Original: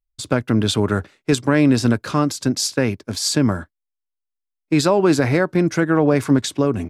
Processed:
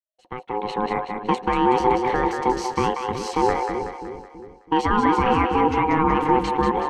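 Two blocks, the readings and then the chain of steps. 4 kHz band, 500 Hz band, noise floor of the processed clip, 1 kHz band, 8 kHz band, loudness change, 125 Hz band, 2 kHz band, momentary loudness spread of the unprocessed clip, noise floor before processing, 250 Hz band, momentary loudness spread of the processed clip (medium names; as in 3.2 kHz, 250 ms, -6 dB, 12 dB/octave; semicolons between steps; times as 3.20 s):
-9.5 dB, -3.0 dB, -56 dBFS, +8.5 dB, -15.5 dB, -3.0 dB, -11.0 dB, -3.0 dB, 7 LU, -82 dBFS, -6.5 dB, 12 LU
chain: fade-in on the opening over 1.70 s; peak limiter -10.5 dBFS, peak gain reduction 6.5 dB; Savitzky-Golay filter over 25 samples; ring modulator 630 Hz; two-band feedback delay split 440 Hz, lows 327 ms, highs 187 ms, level -5 dB; trim +2.5 dB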